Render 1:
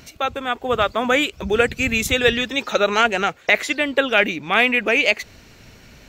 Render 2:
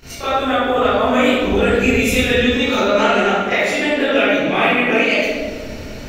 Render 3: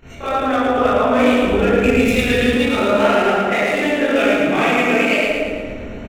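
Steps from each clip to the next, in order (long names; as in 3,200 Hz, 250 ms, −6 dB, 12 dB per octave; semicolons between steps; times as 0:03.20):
downward compressor 3 to 1, threshold −28 dBFS, peak gain reduction 13.5 dB; convolution reverb RT60 2.0 s, pre-delay 24 ms, DRR −18.5 dB; level −6 dB
adaptive Wiener filter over 9 samples; on a send: repeating echo 111 ms, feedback 51%, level −4 dB; on the sum: level −1.5 dB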